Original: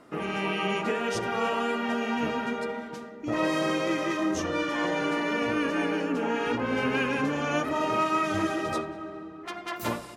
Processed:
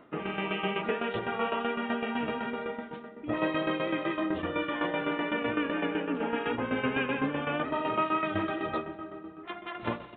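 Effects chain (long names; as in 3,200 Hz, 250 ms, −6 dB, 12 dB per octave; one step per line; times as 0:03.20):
shaped tremolo saw down 7.9 Hz, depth 65%
downsampling to 8,000 Hz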